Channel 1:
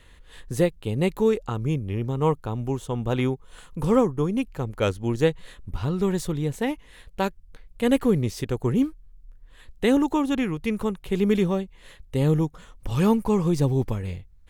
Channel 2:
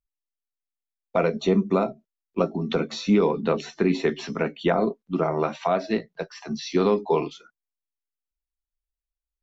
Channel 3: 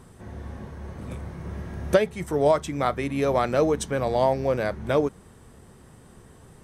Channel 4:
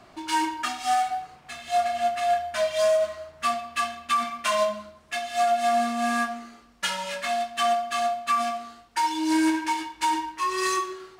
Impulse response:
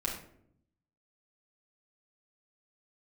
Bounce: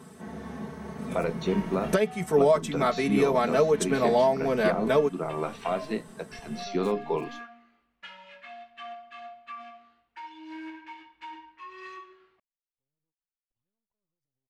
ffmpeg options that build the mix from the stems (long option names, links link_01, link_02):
-filter_complex "[0:a]alimiter=limit=-19dB:level=0:latency=1,aeval=exprs='max(val(0),0)':channel_layout=same,adelay=650,volume=-16dB[link_01];[1:a]volume=-6.5dB,asplit=2[link_02][link_03];[2:a]highpass=frequency=100:width=0.5412,highpass=frequency=100:width=1.3066,aecho=1:1:4.6:0.91,volume=0dB[link_04];[3:a]lowpass=frequency=2600:width_type=q:width=1.7,adelay=1200,volume=-19dB[link_05];[link_03]apad=whole_len=667870[link_06];[link_01][link_06]sidechaingate=range=-44dB:threshold=-49dB:ratio=16:detection=peak[link_07];[link_07][link_02][link_04][link_05]amix=inputs=4:normalize=0,alimiter=limit=-12dB:level=0:latency=1:release=447"